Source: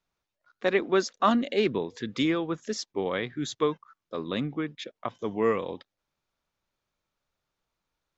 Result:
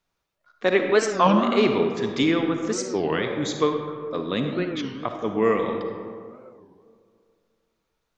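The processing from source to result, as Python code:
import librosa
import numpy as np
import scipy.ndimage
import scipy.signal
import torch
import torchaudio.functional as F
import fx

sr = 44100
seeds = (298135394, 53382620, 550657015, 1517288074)

y = fx.rev_freeverb(x, sr, rt60_s=2.3, hf_ratio=0.4, predelay_ms=15, drr_db=4.0)
y = fx.record_warp(y, sr, rpm=33.33, depth_cents=250.0)
y = y * 10.0 ** (4.0 / 20.0)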